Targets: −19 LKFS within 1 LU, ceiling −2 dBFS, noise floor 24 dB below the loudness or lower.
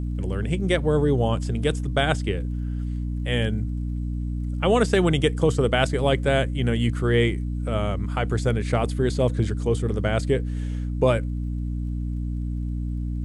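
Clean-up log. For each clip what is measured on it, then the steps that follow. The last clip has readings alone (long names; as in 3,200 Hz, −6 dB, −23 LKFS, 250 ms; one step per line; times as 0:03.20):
crackle rate 22 per second; mains hum 60 Hz; hum harmonics up to 300 Hz; level of the hum −25 dBFS; integrated loudness −24.5 LKFS; sample peak −6.5 dBFS; target loudness −19.0 LKFS
→ click removal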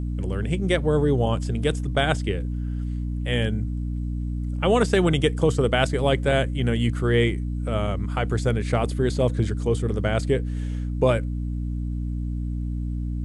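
crackle rate 0 per second; mains hum 60 Hz; hum harmonics up to 300 Hz; level of the hum −25 dBFS
→ mains-hum notches 60/120/180/240/300 Hz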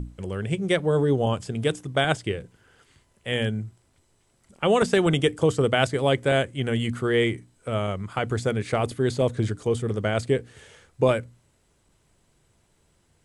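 mains hum none found; integrated loudness −24.5 LKFS; sample peak −6.5 dBFS; target loudness −19.0 LKFS
→ level +5.5 dB
brickwall limiter −2 dBFS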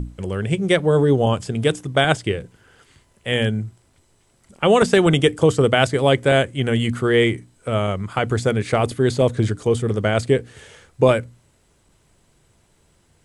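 integrated loudness −19.5 LKFS; sample peak −2.0 dBFS; background noise floor −60 dBFS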